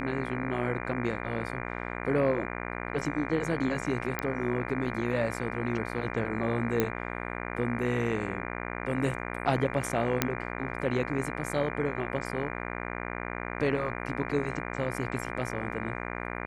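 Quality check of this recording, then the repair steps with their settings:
buzz 60 Hz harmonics 40 -36 dBFS
4.19 s: pop -14 dBFS
6.80 s: pop -11 dBFS
10.22 s: pop -7 dBFS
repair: de-click; de-hum 60 Hz, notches 40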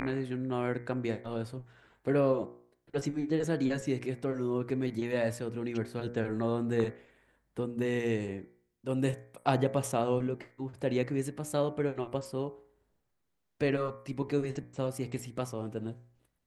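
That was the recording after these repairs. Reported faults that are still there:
10.22 s: pop

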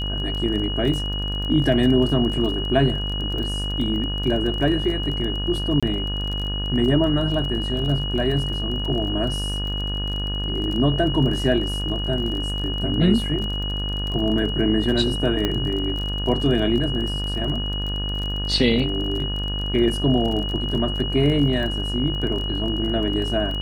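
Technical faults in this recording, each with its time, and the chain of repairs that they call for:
buzz 50 Hz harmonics 36 -27 dBFS
crackle 27 per s -28 dBFS
whine 2.9 kHz -28 dBFS
5.80–5.83 s: dropout 26 ms
15.45 s: pop -9 dBFS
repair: de-click; band-stop 2.9 kHz, Q 30; de-hum 50 Hz, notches 36; interpolate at 5.80 s, 26 ms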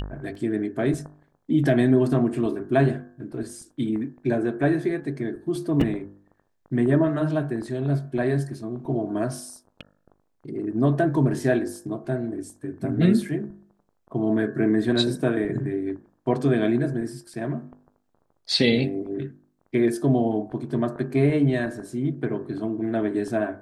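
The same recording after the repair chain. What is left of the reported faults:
nothing left

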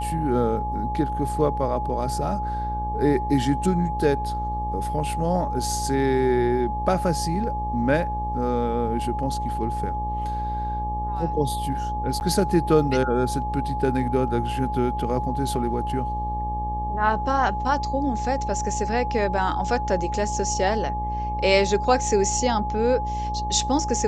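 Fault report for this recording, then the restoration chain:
buzz 60 Hz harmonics 19 -30 dBFS
whine 840 Hz -27 dBFS
12.20–12.21 s: dropout 9.8 ms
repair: de-hum 60 Hz, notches 19; band-stop 840 Hz, Q 30; interpolate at 12.20 s, 9.8 ms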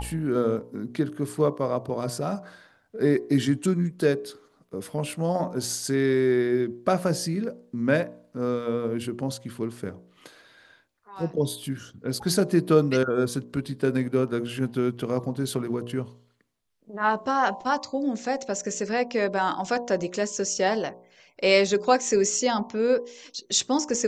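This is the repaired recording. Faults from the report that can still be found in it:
nothing left

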